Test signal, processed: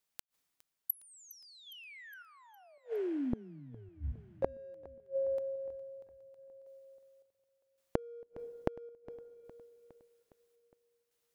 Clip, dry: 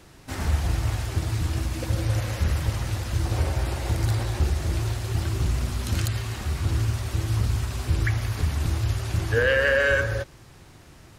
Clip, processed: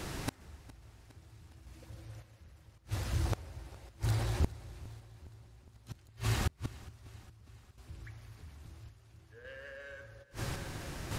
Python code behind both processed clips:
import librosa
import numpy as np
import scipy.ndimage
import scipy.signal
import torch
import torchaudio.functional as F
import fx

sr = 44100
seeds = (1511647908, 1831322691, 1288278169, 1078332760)

p1 = np.clip(x, -10.0 ** (-23.5 / 20.0), 10.0 ** (-23.5 / 20.0))
p2 = x + (p1 * 10.0 ** (-8.0 / 20.0))
p3 = fx.tremolo_random(p2, sr, seeds[0], hz=1.8, depth_pct=90)
p4 = fx.rev_double_slope(p3, sr, seeds[1], early_s=0.81, late_s=3.5, knee_db=-19, drr_db=19.5)
p5 = fx.gate_flip(p4, sr, shuts_db=-30.0, range_db=-37)
p6 = fx.echo_feedback(p5, sr, ms=411, feedback_pct=59, wet_db=-20.0)
y = p6 * 10.0 ** (10.5 / 20.0)